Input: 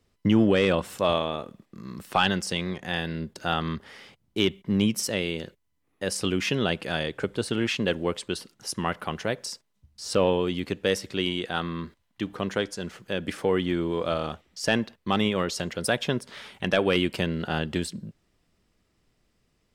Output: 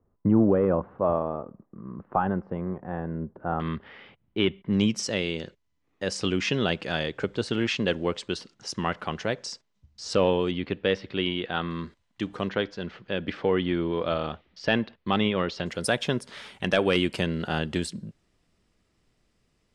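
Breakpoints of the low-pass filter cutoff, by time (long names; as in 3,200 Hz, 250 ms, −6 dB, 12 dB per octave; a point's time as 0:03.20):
low-pass filter 24 dB per octave
1,200 Hz
from 0:03.60 3,200 Hz
from 0:04.73 7,000 Hz
from 0:10.51 3,800 Hz
from 0:11.71 8,600 Hz
from 0:12.49 4,200 Hz
from 0:15.66 11,000 Hz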